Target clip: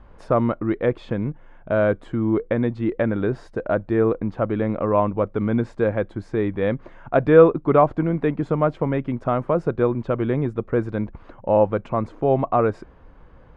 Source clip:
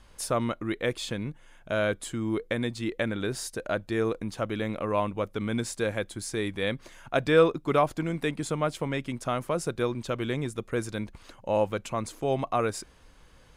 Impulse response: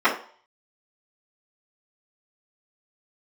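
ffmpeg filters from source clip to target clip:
-af "lowpass=1200,volume=8.5dB"

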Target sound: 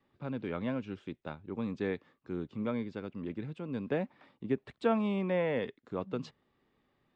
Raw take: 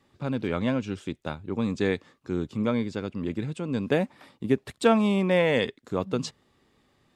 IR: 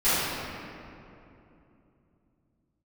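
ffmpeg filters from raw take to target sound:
-filter_complex "[0:a]lowpass=3100,equalizer=frequency=82:width_type=o:width=0.82:gain=-4.5,acrossover=split=480|1800[link_01][link_02][link_03];[link_03]alimiter=level_in=5dB:limit=-24dB:level=0:latency=1:release=34,volume=-5dB[link_04];[link_01][link_02][link_04]amix=inputs=3:normalize=0,volume=-8dB"

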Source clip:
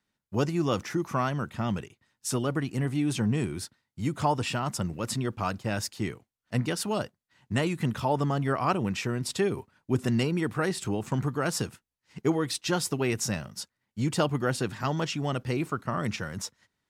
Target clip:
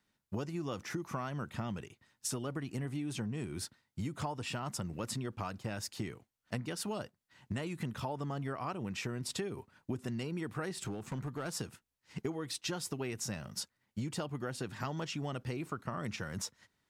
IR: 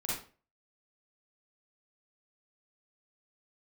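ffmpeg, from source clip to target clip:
-filter_complex "[0:a]acompressor=threshold=-36dB:ratio=12,asettb=1/sr,asplit=3[link_01][link_02][link_03];[link_01]atrim=end=10.744[link_04];[link_02]atrim=start=10.74:end=11.51,asetpts=PTS-STARTPTS,afade=type=in:duration=0.004:curve=qsin,afade=type=out:start_time=0.766:duration=0.004:curve=qsin,volume=34.5dB,asoftclip=hard,volume=-34.5dB[link_05];[link_03]atrim=start=11.506[link_06];[link_04][link_05]acrossfade=duration=0.004:curve1=hsin:curve2=qsin[link_07];[link_07][link_06]acrossfade=duration=0.004:curve1=qsin:curve2=hsin,volume=1.5dB"

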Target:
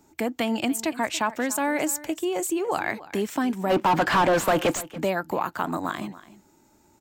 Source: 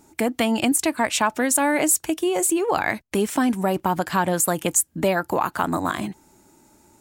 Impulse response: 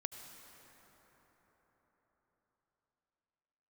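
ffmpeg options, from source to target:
-filter_complex "[0:a]equalizer=frequency=9900:width_type=o:width=0.28:gain=-14,acrossover=split=110|1600[link_01][link_02][link_03];[link_01]acompressor=threshold=-54dB:ratio=6[link_04];[link_04][link_02][link_03]amix=inputs=3:normalize=0,asplit=3[link_05][link_06][link_07];[link_05]afade=type=out:start_time=3.69:duration=0.02[link_08];[link_06]asplit=2[link_09][link_10];[link_10]highpass=frequency=720:poles=1,volume=30dB,asoftclip=type=tanh:threshold=-6.5dB[link_11];[link_09][link_11]amix=inputs=2:normalize=0,lowpass=frequency=1500:poles=1,volume=-6dB,afade=type=in:start_time=3.69:duration=0.02,afade=type=out:start_time=4.8:duration=0.02[link_12];[link_07]afade=type=in:start_time=4.8:duration=0.02[link_13];[link_08][link_12][link_13]amix=inputs=3:normalize=0,aecho=1:1:285:0.133,volume=-4.5dB"

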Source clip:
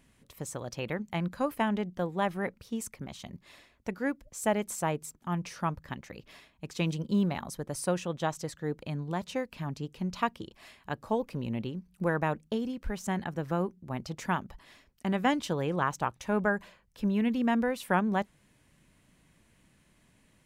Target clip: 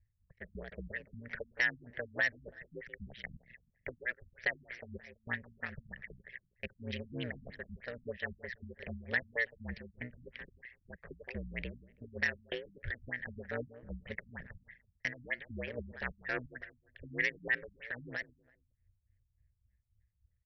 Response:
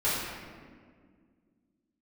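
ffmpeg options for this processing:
-filter_complex "[0:a]equalizer=frequency=430:width=2.1:gain=-14.5,anlmdn=0.01,acrossover=split=3100[link_01][link_02];[link_02]acompressor=threshold=-47dB:ratio=4:attack=1:release=60[link_03];[link_01][link_03]amix=inputs=2:normalize=0,firequalizer=gain_entry='entry(100,0);entry(250,-25);entry(460,12);entry(700,-10);entry(1100,-20);entry(1800,15);entry(2600,-2);entry(4100,-14);entry(9100,-23);entry(15000,-7)':delay=0.05:min_phase=1,alimiter=limit=-22.5dB:level=0:latency=1:release=11,acrossover=split=220|3000[link_04][link_05][link_06];[link_05]acompressor=threshold=-37dB:ratio=6[link_07];[link_04][link_07][link_06]amix=inputs=3:normalize=0,aeval=exprs='0.0631*(cos(1*acos(clip(val(0)/0.0631,-1,1)))-cos(1*PI/2))+0.00158*(cos(4*acos(clip(val(0)/0.0631,-1,1)))-cos(4*PI/2))+0.00501*(cos(5*acos(clip(val(0)/0.0631,-1,1)))-cos(5*PI/2))':channel_layout=same,aeval=exprs='val(0)*sin(2*PI*61*n/s)':channel_layout=same,crystalizer=i=6.5:c=0,tremolo=f=3.6:d=0.65,asplit=2[link_08][link_09];[link_09]adelay=166,lowpass=frequency=1600:poles=1,volume=-15.5dB,asplit=2[link_10][link_11];[link_11]adelay=166,lowpass=frequency=1600:poles=1,volume=0.34,asplit=2[link_12][link_13];[link_13]adelay=166,lowpass=frequency=1600:poles=1,volume=0.34[link_14];[link_08][link_10][link_12][link_14]amix=inputs=4:normalize=0,afftfilt=real='re*lt(b*sr/1024,240*pow(6000/240,0.5+0.5*sin(2*PI*3.2*pts/sr)))':imag='im*lt(b*sr/1024,240*pow(6000/240,0.5+0.5*sin(2*PI*3.2*pts/sr)))':win_size=1024:overlap=0.75,volume=3.5dB"

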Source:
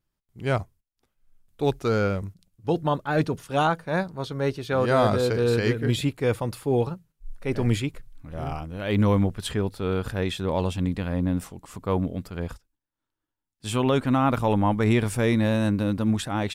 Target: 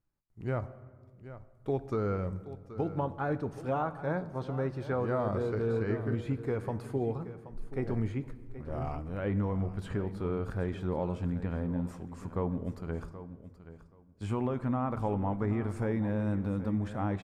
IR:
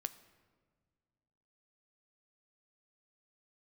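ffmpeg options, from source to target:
-filter_complex "[0:a]aemphasis=mode=reproduction:type=50kf,acrossover=split=2500[link_01][link_02];[link_02]acompressor=threshold=-46dB:ratio=4:attack=1:release=60[link_03];[link_01][link_03]amix=inputs=2:normalize=0,equalizer=frequency=3300:width_type=o:width=0.89:gain=-8,acompressor=threshold=-25dB:ratio=4,aecho=1:1:746|1492:0.2|0.0339[link_04];[1:a]atrim=start_sample=2205[link_05];[link_04][link_05]afir=irnorm=-1:irlink=0,asetrate=42336,aresample=44100,volume=-1.5dB"

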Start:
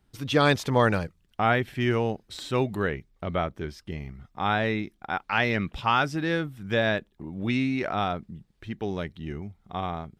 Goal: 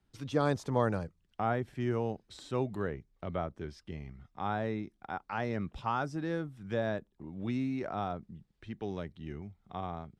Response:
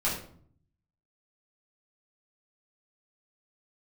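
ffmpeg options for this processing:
-filter_complex "[0:a]lowpass=8500,acrossover=split=110|1400|5300[link_01][link_02][link_03][link_04];[link_03]acompressor=threshold=-47dB:ratio=6[link_05];[link_01][link_02][link_05][link_04]amix=inputs=4:normalize=0,volume=-7dB"

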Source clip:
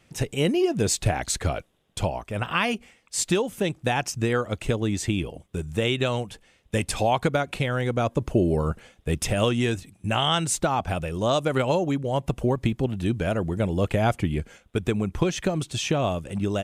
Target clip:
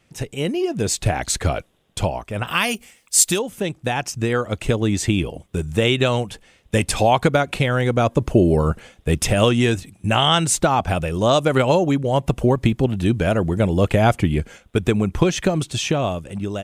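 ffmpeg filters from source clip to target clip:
ffmpeg -i in.wav -filter_complex "[0:a]asettb=1/sr,asplit=3[link_01][link_02][link_03];[link_01]atrim=end=2.474[link_04];[link_02]atrim=start=2.47:end=3.39,asetpts=PTS-STARTPTS,afade=type=in:duration=0.004:curve=qsin,afade=type=out:start_time=0.916:duration=0.004:curve=qsin,aemphasis=mode=production:type=75fm[link_05];[link_03]atrim=start=3.386[link_06];[link_04][link_05]acrossfade=duration=0.004:curve1=hsin:curve2=qsin[link_07];[link_07][link_06]acrossfade=duration=0.004:curve1=qsin:curve2=hsin,dynaudnorm=framelen=310:gausssize=7:maxgain=11.5dB,volume=-1dB" out.wav

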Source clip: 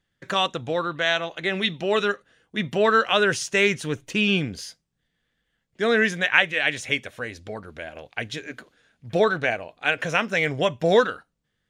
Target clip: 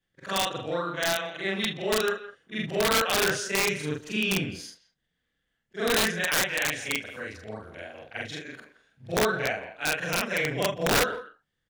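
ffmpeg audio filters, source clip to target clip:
ffmpeg -i in.wav -filter_complex "[0:a]afftfilt=real='re':imag='-im':win_size=4096:overlap=0.75,asplit=2[link_01][link_02];[link_02]adelay=170,highpass=300,lowpass=3400,asoftclip=type=hard:threshold=-17dB,volume=-14dB[link_03];[link_01][link_03]amix=inputs=2:normalize=0,aeval=exprs='(mod(6.31*val(0)+1,2)-1)/6.31':channel_layout=same" out.wav

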